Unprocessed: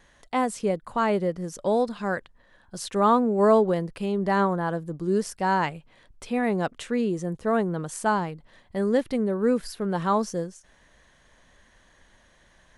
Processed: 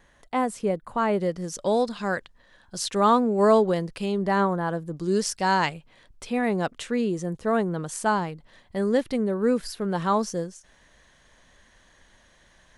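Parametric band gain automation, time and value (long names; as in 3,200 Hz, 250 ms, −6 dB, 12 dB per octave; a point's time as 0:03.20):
parametric band 5,100 Hz 2 octaves
−4 dB
from 0:01.21 +7 dB
from 0:04.22 +0.5 dB
from 0:04.97 +10.5 dB
from 0:05.74 +3 dB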